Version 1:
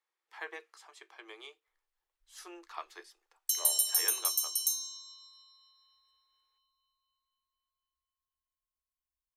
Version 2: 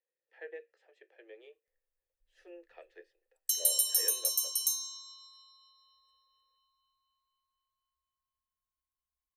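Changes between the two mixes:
speech: add formant filter e
master: add parametric band 350 Hz +12 dB 2.7 octaves

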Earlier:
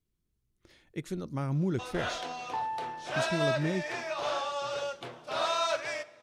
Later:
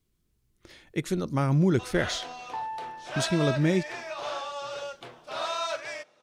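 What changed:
speech +9.5 dB
first sound: send −11.5 dB
master: add low-shelf EQ 400 Hz −3 dB

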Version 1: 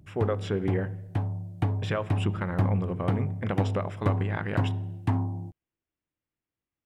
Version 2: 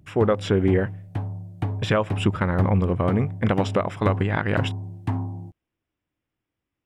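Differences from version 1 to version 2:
speech +9.0 dB
reverb: off

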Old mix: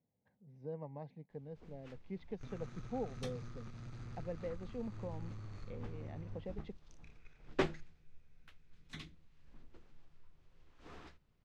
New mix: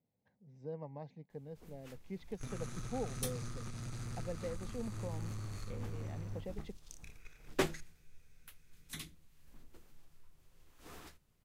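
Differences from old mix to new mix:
second sound +5.0 dB
master: remove high-frequency loss of the air 160 metres

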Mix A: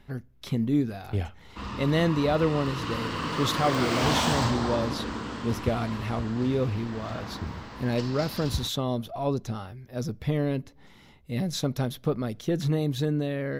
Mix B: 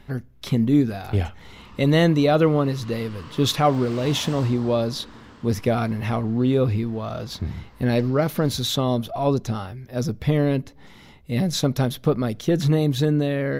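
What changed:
speech +6.5 dB
background −12.0 dB

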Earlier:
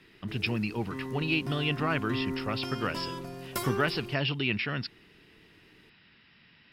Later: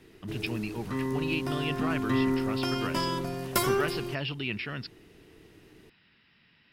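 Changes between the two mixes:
speech −4.0 dB
background +7.0 dB

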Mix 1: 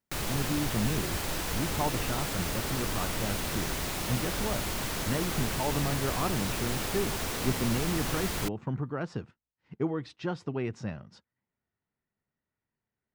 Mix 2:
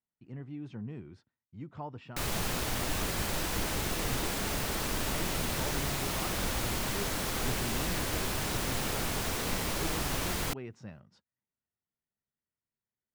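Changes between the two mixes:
speech −10.0 dB
background: entry +2.05 s

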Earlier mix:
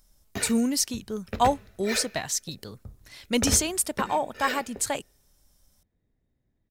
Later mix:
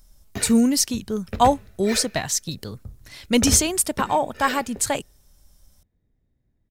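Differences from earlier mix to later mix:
speech +4.5 dB
master: add low-shelf EQ 200 Hz +6 dB

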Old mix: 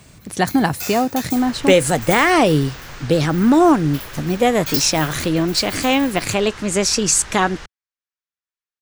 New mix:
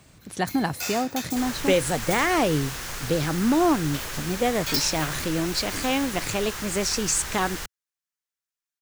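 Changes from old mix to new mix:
speech −8.0 dB
first sound: add high-shelf EQ 11,000 Hz −9.5 dB
second sound: remove high-frequency loss of the air 110 metres

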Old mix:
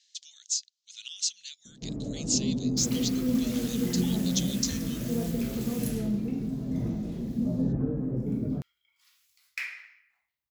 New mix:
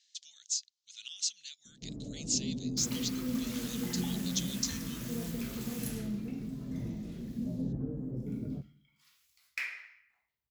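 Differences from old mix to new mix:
first sound −11.0 dB
second sound: send on
master: add tilt shelving filter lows +4 dB, about 770 Hz

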